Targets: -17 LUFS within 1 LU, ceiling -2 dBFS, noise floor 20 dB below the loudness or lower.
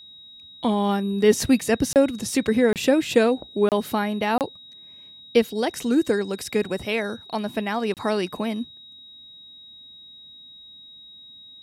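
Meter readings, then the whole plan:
dropouts 5; longest dropout 28 ms; steady tone 3800 Hz; tone level -43 dBFS; loudness -23.0 LUFS; peak -5.5 dBFS; loudness target -17.0 LUFS
-> interpolate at 1.93/2.73/3.69/4.38/7.94, 28 ms; notch 3800 Hz, Q 30; gain +6 dB; limiter -2 dBFS

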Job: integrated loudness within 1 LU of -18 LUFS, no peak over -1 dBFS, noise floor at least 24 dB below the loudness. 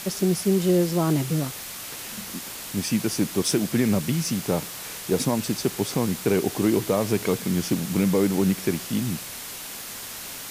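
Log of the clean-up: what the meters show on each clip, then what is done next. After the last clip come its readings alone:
noise floor -37 dBFS; noise floor target -49 dBFS; loudness -25.0 LUFS; peak -10.0 dBFS; loudness target -18.0 LUFS
-> denoiser 12 dB, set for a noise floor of -37 dBFS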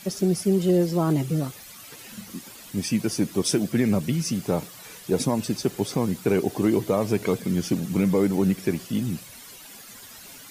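noise floor -45 dBFS; noise floor target -49 dBFS
-> denoiser 6 dB, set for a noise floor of -45 dBFS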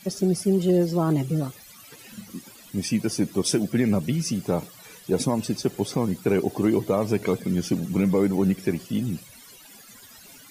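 noise floor -48 dBFS; noise floor target -49 dBFS
-> denoiser 6 dB, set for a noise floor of -48 dBFS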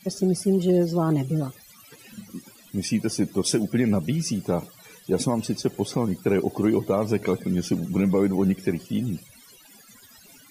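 noise floor -52 dBFS; loudness -24.5 LUFS; peak -11.0 dBFS; loudness target -18.0 LUFS
-> gain +6.5 dB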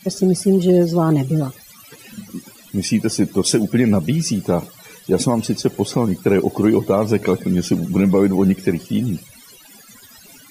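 loudness -18.0 LUFS; peak -4.5 dBFS; noise floor -45 dBFS

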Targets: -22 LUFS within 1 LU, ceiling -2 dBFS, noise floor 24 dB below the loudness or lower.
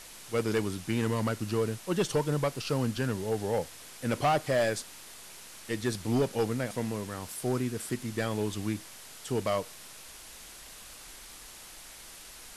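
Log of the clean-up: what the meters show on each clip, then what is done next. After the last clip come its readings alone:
clipped 0.7%; flat tops at -20.5 dBFS; noise floor -48 dBFS; noise floor target -56 dBFS; loudness -31.5 LUFS; peak -20.5 dBFS; loudness target -22.0 LUFS
-> clip repair -20.5 dBFS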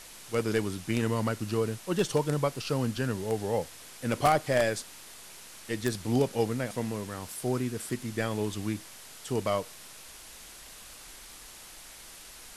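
clipped 0.0%; noise floor -48 dBFS; noise floor target -55 dBFS
-> denoiser 7 dB, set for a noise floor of -48 dBFS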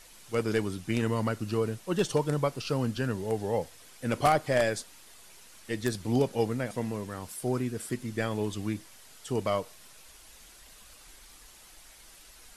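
noise floor -53 dBFS; noise floor target -55 dBFS
-> denoiser 6 dB, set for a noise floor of -53 dBFS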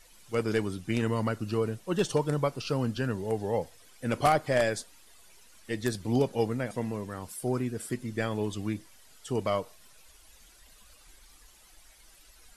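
noise floor -57 dBFS; loudness -30.5 LUFS; peak -11.5 dBFS; loudness target -22.0 LUFS
-> gain +8.5 dB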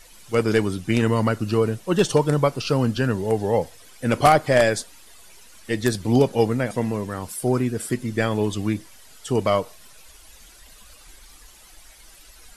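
loudness -22.0 LUFS; peak -3.0 dBFS; noise floor -49 dBFS

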